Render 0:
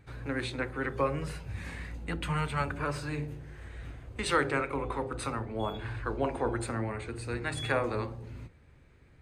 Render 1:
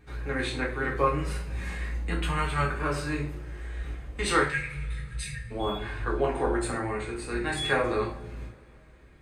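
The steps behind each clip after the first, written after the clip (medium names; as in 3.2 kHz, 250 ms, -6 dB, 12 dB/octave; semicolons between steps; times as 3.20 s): spectral selection erased 4.42–5.51 s, 210–1600 Hz; peaking EQ 150 Hz -4.5 dB 0.29 oct; two-slope reverb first 0.36 s, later 3.3 s, from -28 dB, DRR -2.5 dB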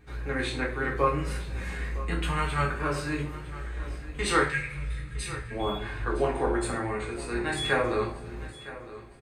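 feedback delay 960 ms, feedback 38%, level -16 dB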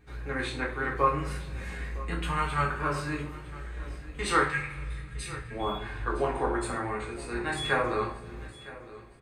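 spring tank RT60 2.3 s, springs 41 ms, chirp 45 ms, DRR 15.5 dB; dynamic bell 1.1 kHz, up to +5 dB, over -39 dBFS, Q 1.4; trim -3 dB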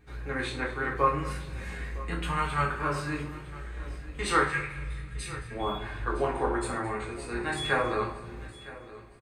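delay 217 ms -17.5 dB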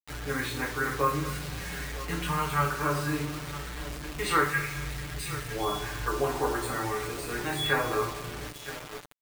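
in parallel at -1 dB: compression, threshold -35 dBFS, peak gain reduction 16 dB; on the sum: word length cut 6-bit, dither none; comb 6.8 ms, depth 59%; trim -3.5 dB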